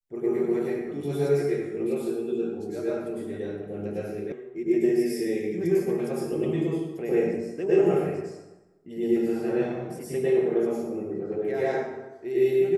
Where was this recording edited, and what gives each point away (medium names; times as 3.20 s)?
4.32 s: sound stops dead